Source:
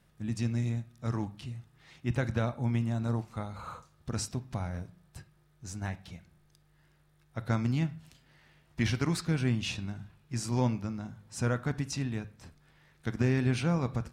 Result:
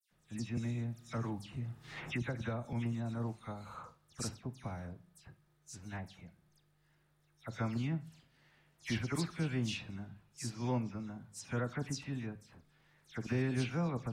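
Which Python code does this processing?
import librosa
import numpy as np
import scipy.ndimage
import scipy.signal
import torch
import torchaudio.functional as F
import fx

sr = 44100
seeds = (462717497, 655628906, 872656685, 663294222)

y = fx.peak_eq(x, sr, hz=65.0, db=-7.0, octaves=1.2)
y = fx.dispersion(y, sr, late='lows', ms=111.0, hz=2900.0)
y = fx.band_squash(y, sr, depth_pct=100, at=(0.57, 2.73))
y = y * 10.0 ** (-5.5 / 20.0)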